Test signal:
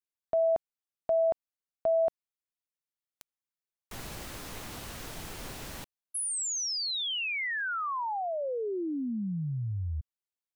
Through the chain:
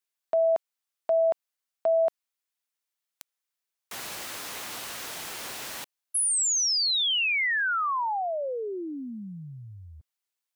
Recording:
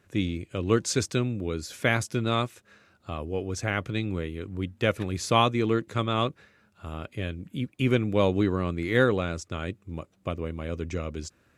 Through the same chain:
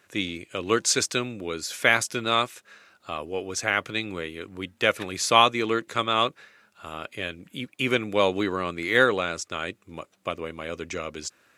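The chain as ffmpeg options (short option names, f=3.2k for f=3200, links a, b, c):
-af "highpass=f=890:p=1,volume=7.5dB"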